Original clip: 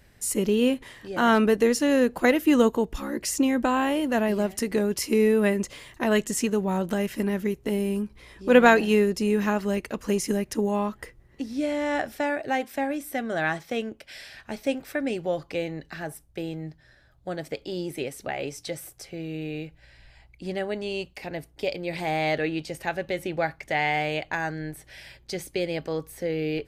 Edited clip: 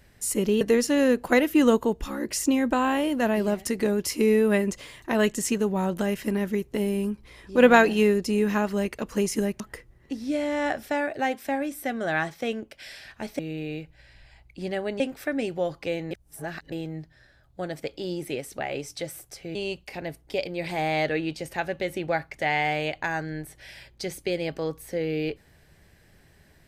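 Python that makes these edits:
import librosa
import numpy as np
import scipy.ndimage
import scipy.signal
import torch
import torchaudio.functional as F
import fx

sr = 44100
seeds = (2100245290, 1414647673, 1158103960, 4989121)

y = fx.edit(x, sr, fx.cut(start_s=0.61, length_s=0.92),
    fx.cut(start_s=10.52, length_s=0.37),
    fx.reverse_span(start_s=15.79, length_s=0.61),
    fx.move(start_s=19.23, length_s=1.61, to_s=14.68), tone=tone)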